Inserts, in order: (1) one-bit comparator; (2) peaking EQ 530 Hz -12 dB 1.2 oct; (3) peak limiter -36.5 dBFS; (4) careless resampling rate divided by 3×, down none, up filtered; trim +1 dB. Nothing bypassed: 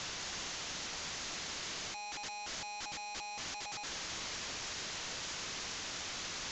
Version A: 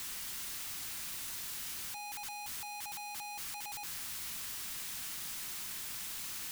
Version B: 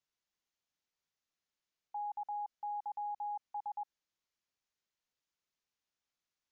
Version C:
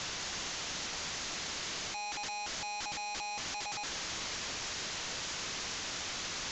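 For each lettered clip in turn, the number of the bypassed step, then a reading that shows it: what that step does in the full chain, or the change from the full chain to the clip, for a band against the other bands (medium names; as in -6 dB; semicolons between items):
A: 4, 500 Hz band -8.0 dB; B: 1, momentary loudness spread change +4 LU; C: 3, mean gain reduction 3.0 dB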